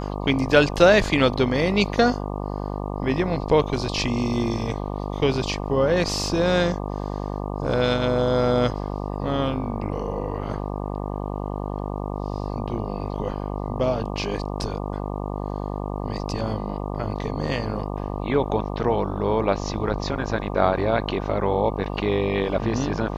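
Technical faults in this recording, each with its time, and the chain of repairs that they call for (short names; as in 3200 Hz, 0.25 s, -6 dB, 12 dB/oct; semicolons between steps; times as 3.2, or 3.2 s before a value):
buzz 50 Hz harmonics 24 -29 dBFS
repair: de-hum 50 Hz, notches 24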